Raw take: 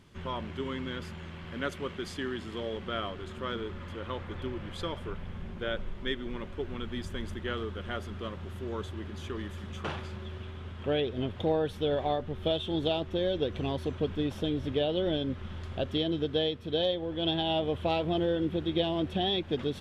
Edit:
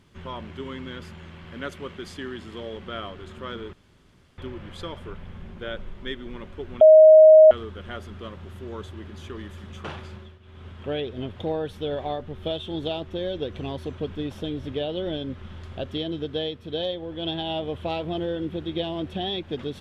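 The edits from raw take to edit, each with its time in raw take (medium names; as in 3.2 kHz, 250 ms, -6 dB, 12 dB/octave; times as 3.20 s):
3.73–4.38 s: room tone
6.81–7.51 s: bleep 627 Hz -7 dBFS
10.14–10.66 s: dip -13 dB, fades 0.25 s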